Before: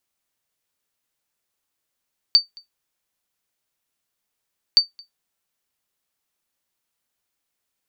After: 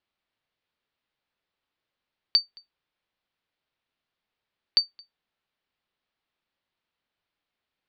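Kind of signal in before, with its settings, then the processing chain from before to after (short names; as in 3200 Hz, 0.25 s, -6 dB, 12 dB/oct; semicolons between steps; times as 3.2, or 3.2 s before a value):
sonar ping 4590 Hz, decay 0.14 s, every 2.42 s, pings 2, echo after 0.22 s, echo -28.5 dB -4.5 dBFS
inverse Chebyshev low-pass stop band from 7800 Hz, stop band 40 dB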